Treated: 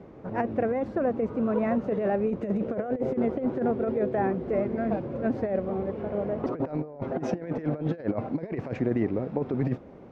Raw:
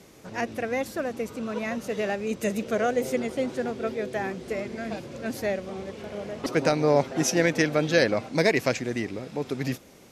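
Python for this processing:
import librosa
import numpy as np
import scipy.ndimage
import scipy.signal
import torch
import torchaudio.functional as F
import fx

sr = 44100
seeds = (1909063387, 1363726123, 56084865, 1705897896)

y = scipy.signal.sosfilt(scipy.signal.butter(2, 1000.0, 'lowpass', fs=sr, output='sos'), x)
y = fx.over_compress(y, sr, threshold_db=-29.0, ratio=-0.5)
y = y * librosa.db_to_amplitude(3.0)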